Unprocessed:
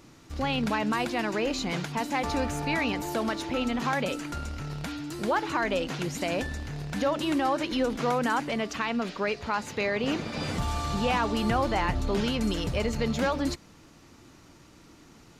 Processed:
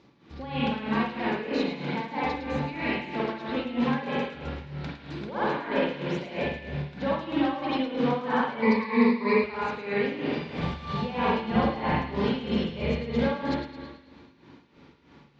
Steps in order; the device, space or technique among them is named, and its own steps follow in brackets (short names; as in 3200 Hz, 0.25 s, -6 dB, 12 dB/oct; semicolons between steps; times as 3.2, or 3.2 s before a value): combo amplifier with spring reverb and tremolo (spring tank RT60 1.5 s, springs 42/49 ms, chirp 70 ms, DRR -6.5 dB; tremolo 3.1 Hz, depth 76%; speaker cabinet 82–4300 Hz, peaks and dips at 100 Hz -10 dB, 300 Hz -4 dB, 660 Hz -6 dB, 1300 Hz -8 dB, 1900 Hz -3 dB, 2800 Hz -5 dB); 8.62–9.44 ripple EQ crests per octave 0.93, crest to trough 17 dB; thin delay 0.108 s, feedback 50%, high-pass 1700 Hz, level -11 dB; gain -1.5 dB